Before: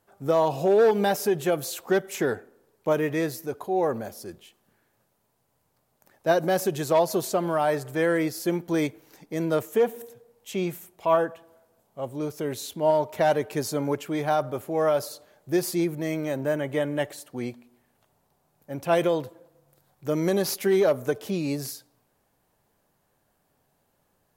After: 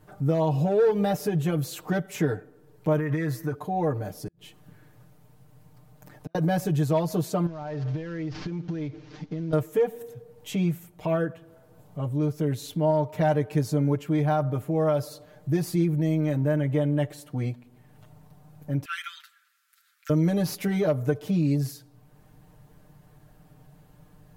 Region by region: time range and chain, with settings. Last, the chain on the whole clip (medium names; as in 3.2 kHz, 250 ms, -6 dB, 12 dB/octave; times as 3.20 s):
2.97–3.55 s: high-order bell 1.4 kHz +8.5 dB 1.3 oct + compression 5:1, threshold -27 dBFS
4.27–6.35 s: compression 3:1, threshold -39 dBFS + inverted gate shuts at -32 dBFS, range -37 dB
7.46–9.53 s: CVSD coder 32 kbps + compression 12:1, threshold -35 dBFS
18.85–20.10 s: Chebyshev high-pass 1.3 kHz, order 6 + treble shelf 10 kHz -4.5 dB
whole clip: tone controls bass +14 dB, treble -4 dB; comb 6.6 ms, depth 95%; compression 1.5:1, threshold -53 dBFS; trim +6.5 dB